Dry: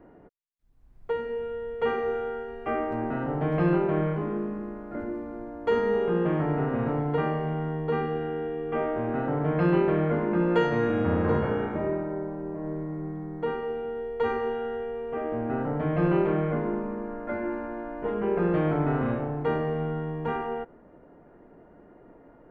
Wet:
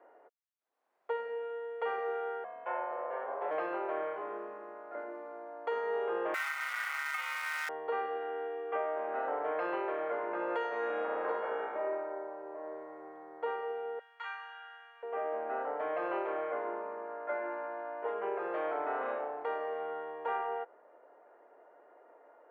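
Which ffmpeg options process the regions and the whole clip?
-filter_complex "[0:a]asettb=1/sr,asplit=3[a][b][c];[a]atrim=end=2.444[d];[b]atrim=start=2.44:end=3.51,asetpts=PTS-STARTPTS,afade=t=in:d=0.004:c=qsin,afade=t=out:st=1.066:d=0.004:c=qsin,highshelf=f=3.4k:g=-10,aeval=exprs='val(0)*sin(2*PI*260*n/s)':c=same[e];[c]atrim=start=3.506[f];[d][e]acrossfade=d=0.004:c1=hsin:c2=qsin[g];[g][f]acrossfade=d=0.004:c1=qsin:c2=hsin,asettb=1/sr,asplit=3[h][i][j];[h]atrim=end=6.344[k];[i]atrim=start=6.34:end=7.69,asetpts=PTS-STARTPTS,afade=t=in:d=0.004:c=qsin,afade=t=out:st=1.346:d=0.004:c=qsin,aeval=exprs='val(0)*sin(2*PI*1700*n/s)':c=same,acrusher=bits=6:dc=4:mix=0:aa=0.000001,highpass=1k[l];[j]atrim=start=7.686[m];[k][l]acrossfade=d=0.004:c1=hsin:c2=qsin[n];[n][m]acrossfade=d=0.004:c1=qsin:c2=hsin,asettb=1/sr,asplit=3[o][p][q];[o]atrim=end=13.994[r];[p]atrim=start=13.99:end=15.03,asetpts=PTS-STARTPTS,afade=t=in:d=0.004:c=qsin,afade=t=out:st=1.036:d=0.004:c=qsin,highpass=f=1.3k:w=0.5412,highpass=f=1.3k:w=1.3066,asplit=2[s][t];[t]adelay=19,volume=-4.5dB[u];[s][u]amix=inputs=2:normalize=0,atrim=end_sample=45864[v];[q]atrim=start=15.026[w];[r][v]acrossfade=d=0.004:c1=hsin:c2=qsin[x];[x][w]acrossfade=d=0.004:c1=qsin:c2=hsin,highpass=f=530:w=0.5412,highpass=f=530:w=1.3066,highshelf=f=3k:g=-11.5,alimiter=level_in=0.5dB:limit=-24dB:level=0:latency=1:release=454,volume=-0.5dB"

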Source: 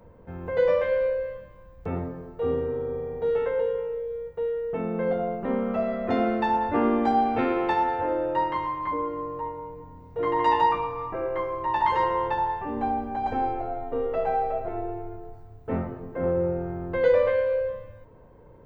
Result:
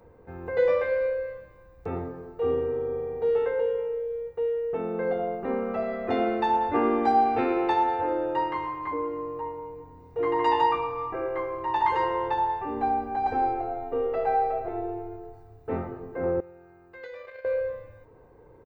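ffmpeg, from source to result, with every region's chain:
-filter_complex "[0:a]asettb=1/sr,asplit=3[a][b][c];[a]atrim=end=16.404[d];[b]atrim=start=16.4:end=17.45,asetpts=PTS-STARTPTS,afade=t=in:d=0.004:c=qsin,afade=t=out:st=1.046:d=0.004:c=qsin,agate=range=-14dB:threshold=-22dB:ratio=16:release=100:detection=peak,tiltshelf=f=1.3k:g=-8.5,acompressor=threshold=-37dB:ratio=12:attack=3.2:release=140:knee=1:detection=peak[e];[c]atrim=start=17.446[f];[d][e]acrossfade=d=0.004:c1=hsin:c2=qsin[g];[g][f]acrossfade=d=0.004:c1=qsin:c2=hsin,lowshelf=f=73:g=-9.5,bandreject=f=3.2k:w=15,aecho=1:1:2.5:0.42,volume=-1dB"

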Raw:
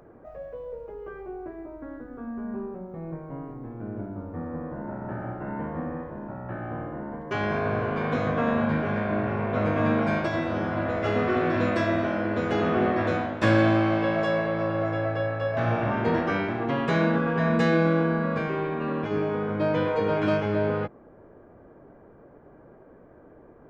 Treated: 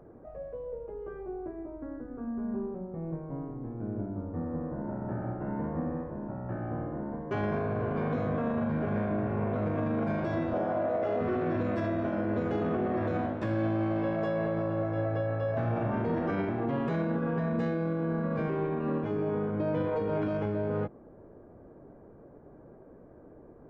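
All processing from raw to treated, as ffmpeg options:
-filter_complex "[0:a]asettb=1/sr,asplit=3[a][b][c];[a]atrim=end=10.534[d];[b]atrim=start=10.53:end=11.21,asetpts=PTS-STARTPTS,afade=t=in:d=0.004:c=qsin,afade=t=out:st=0.676:d=0.004:c=qsin,highpass=f=270:p=1,equalizer=f=640:w=1.7:g=10[e];[c]atrim=start=11.206[f];[d][e]acrossfade=d=0.004:c1=hsin:c2=qsin[g];[g][f]acrossfade=d=0.004:c1=qsin:c2=hsin,tiltshelf=f=1.2k:g=6.5,alimiter=limit=-16.5dB:level=0:latency=1:release=29,volume=-6dB"

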